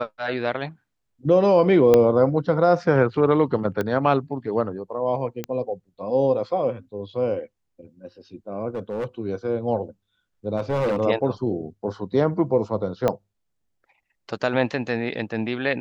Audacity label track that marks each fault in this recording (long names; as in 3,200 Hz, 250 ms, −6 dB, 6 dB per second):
1.940000	1.940000	click −5 dBFS
3.810000	3.810000	click −13 dBFS
5.440000	5.440000	click −14 dBFS
8.750000	9.060000	clipping −23.5 dBFS
10.570000	11.010000	clipping −19 dBFS
13.080000	13.080000	click −9 dBFS